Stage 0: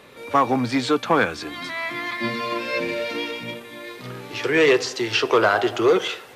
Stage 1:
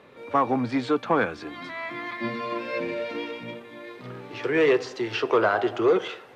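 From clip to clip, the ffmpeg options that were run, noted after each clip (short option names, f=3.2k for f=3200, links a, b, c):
-af "lowpass=f=1.6k:p=1,lowshelf=f=60:g=-9.5,volume=-2.5dB"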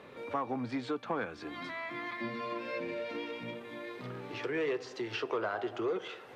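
-af "acompressor=threshold=-41dB:ratio=2"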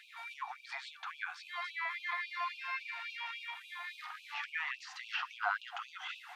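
-filter_complex "[0:a]acrossover=split=2800[a][b];[b]acompressor=threshold=-54dB:ratio=4:attack=1:release=60[c];[a][c]amix=inputs=2:normalize=0,lowshelf=f=120:t=q:w=3:g=-11.5,afftfilt=real='re*gte(b*sr/1024,660*pow(2400/660,0.5+0.5*sin(2*PI*3.6*pts/sr)))':imag='im*gte(b*sr/1024,660*pow(2400/660,0.5+0.5*sin(2*PI*3.6*pts/sr)))':win_size=1024:overlap=0.75,volume=5dB"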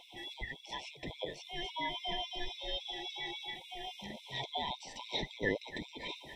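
-af "afftfilt=real='real(if(lt(b,960),b+48*(1-2*mod(floor(b/48),2)),b),0)':imag='imag(if(lt(b,960),b+48*(1-2*mod(floor(b/48),2)),b),0)':win_size=2048:overlap=0.75,volume=1dB"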